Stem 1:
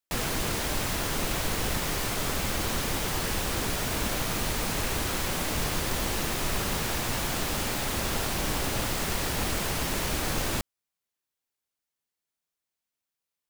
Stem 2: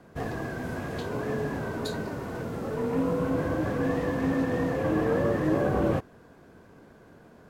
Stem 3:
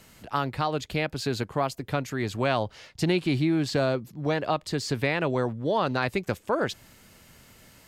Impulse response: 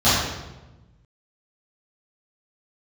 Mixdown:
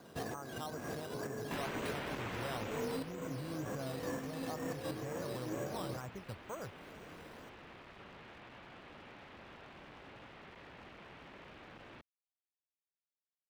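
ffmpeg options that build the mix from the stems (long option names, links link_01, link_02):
-filter_complex "[0:a]lowpass=frequency=3000:width=0.5412,lowpass=frequency=3000:width=1.3066,volume=27.5dB,asoftclip=hard,volume=-27.5dB,adelay=1400,volume=-8dB,afade=type=out:start_time=2.49:duration=0.65:silence=0.266073[link_01];[1:a]volume=-1.5dB[link_02];[2:a]lowpass=frequency=1400:width=0.5412,lowpass=frequency=1400:width=1.3066,asubboost=boost=9.5:cutoff=95,volume=-16dB,asplit=2[link_03][link_04];[link_04]apad=whole_len=330456[link_05];[link_02][link_05]sidechaincompress=threshold=-50dB:ratio=10:attack=7:release=234[link_06];[link_06][link_03]amix=inputs=2:normalize=0,acrusher=samples=8:mix=1:aa=0.000001:lfo=1:lforange=4.8:lforate=2.1,alimiter=level_in=5dB:limit=-24dB:level=0:latency=1:release=376,volume=-5dB,volume=0dB[link_07];[link_01][link_07]amix=inputs=2:normalize=0,highpass=frequency=180:poles=1"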